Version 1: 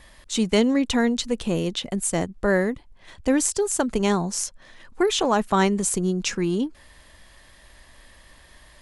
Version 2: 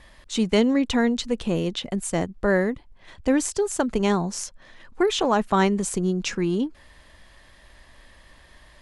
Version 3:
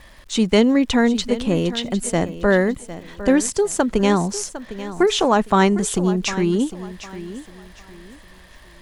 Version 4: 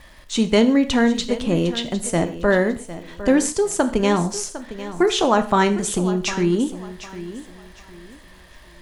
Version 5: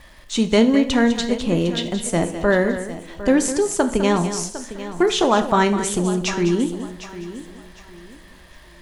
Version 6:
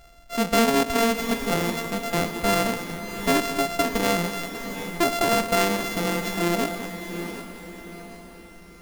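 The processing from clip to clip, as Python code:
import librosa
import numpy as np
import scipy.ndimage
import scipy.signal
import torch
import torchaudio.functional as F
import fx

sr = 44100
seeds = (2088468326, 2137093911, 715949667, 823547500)

y1 = fx.high_shelf(x, sr, hz=7700.0, db=-10.5)
y2 = fx.dmg_crackle(y1, sr, seeds[0], per_s=220.0, level_db=-47.0)
y2 = fx.echo_feedback(y2, sr, ms=755, feedback_pct=29, wet_db=-14.0)
y2 = y2 * librosa.db_to_amplitude(4.5)
y3 = fx.rev_gated(y2, sr, seeds[1], gate_ms=170, shape='falling', drr_db=8.5)
y3 = y3 * librosa.db_to_amplitude(-1.0)
y4 = y3 + 10.0 ** (-11.0 / 20.0) * np.pad(y3, (int(204 * sr / 1000.0), 0))[:len(y3)]
y5 = np.r_[np.sort(y4[:len(y4) // 64 * 64].reshape(-1, 64), axis=1).ravel(), y4[len(y4) // 64 * 64:]]
y5 = np.repeat(y5[::4], 4)[:len(y5)]
y5 = fx.echo_diffused(y5, sr, ms=667, feedback_pct=46, wet_db=-10)
y5 = y5 * librosa.db_to_amplitude(-5.0)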